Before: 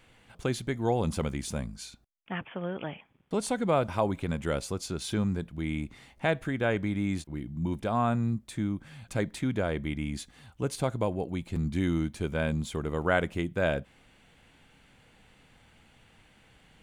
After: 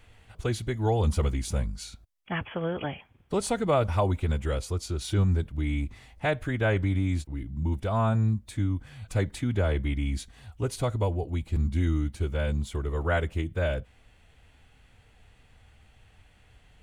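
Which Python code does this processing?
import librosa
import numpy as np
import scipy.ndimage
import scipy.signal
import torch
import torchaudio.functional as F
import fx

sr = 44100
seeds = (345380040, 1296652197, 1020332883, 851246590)

y = fx.pitch_keep_formants(x, sr, semitones=-1.0)
y = fx.low_shelf_res(y, sr, hz=120.0, db=8.5, q=1.5)
y = fx.rider(y, sr, range_db=10, speed_s=2.0)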